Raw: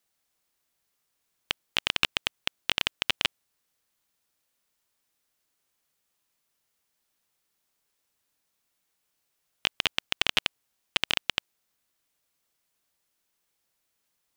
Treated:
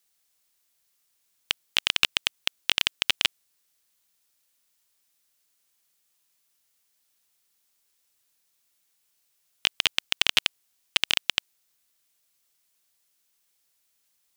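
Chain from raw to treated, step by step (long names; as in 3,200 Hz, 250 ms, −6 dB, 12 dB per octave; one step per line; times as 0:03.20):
high-shelf EQ 2,200 Hz +10 dB
level −3 dB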